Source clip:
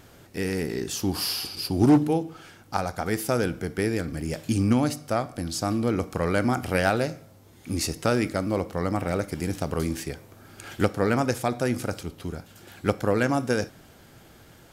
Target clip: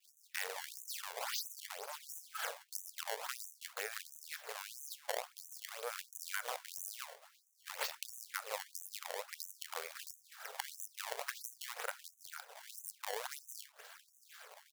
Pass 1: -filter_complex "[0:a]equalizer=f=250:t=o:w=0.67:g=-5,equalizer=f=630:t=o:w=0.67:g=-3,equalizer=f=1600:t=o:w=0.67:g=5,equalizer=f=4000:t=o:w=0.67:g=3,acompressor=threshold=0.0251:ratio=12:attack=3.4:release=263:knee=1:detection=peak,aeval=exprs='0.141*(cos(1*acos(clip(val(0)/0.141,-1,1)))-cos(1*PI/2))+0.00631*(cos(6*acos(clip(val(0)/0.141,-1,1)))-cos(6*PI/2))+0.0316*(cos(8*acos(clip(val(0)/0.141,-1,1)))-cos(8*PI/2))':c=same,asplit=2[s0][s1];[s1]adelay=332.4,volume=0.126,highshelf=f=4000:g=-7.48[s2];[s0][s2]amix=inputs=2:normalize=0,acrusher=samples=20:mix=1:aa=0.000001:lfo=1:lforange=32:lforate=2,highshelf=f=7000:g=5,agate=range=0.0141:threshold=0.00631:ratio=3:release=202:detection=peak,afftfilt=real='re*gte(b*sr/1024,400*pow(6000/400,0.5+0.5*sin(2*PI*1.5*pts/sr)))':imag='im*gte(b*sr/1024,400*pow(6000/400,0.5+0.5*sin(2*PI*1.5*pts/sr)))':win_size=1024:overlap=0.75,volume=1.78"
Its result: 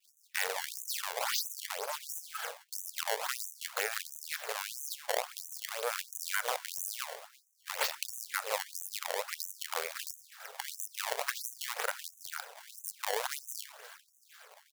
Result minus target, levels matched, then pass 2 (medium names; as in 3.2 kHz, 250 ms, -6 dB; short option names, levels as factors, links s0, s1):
compression: peak gain reduction -6.5 dB
-filter_complex "[0:a]equalizer=f=250:t=o:w=0.67:g=-5,equalizer=f=630:t=o:w=0.67:g=-3,equalizer=f=1600:t=o:w=0.67:g=5,equalizer=f=4000:t=o:w=0.67:g=3,acompressor=threshold=0.0112:ratio=12:attack=3.4:release=263:knee=1:detection=peak,aeval=exprs='0.141*(cos(1*acos(clip(val(0)/0.141,-1,1)))-cos(1*PI/2))+0.00631*(cos(6*acos(clip(val(0)/0.141,-1,1)))-cos(6*PI/2))+0.0316*(cos(8*acos(clip(val(0)/0.141,-1,1)))-cos(8*PI/2))':c=same,asplit=2[s0][s1];[s1]adelay=332.4,volume=0.126,highshelf=f=4000:g=-7.48[s2];[s0][s2]amix=inputs=2:normalize=0,acrusher=samples=20:mix=1:aa=0.000001:lfo=1:lforange=32:lforate=2,highshelf=f=7000:g=5,agate=range=0.0141:threshold=0.00631:ratio=3:release=202:detection=peak,afftfilt=real='re*gte(b*sr/1024,400*pow(6000/400,0.5+0.5*sin(2*PI*1.5*pts/sr)))':imag='im*gte(b*sr/1024,400*pow(6000/400,0.5+0.5*sin(2*PI*1.5*pts/sr)))':win_size=1024:overlap=0.75,volume=1.78"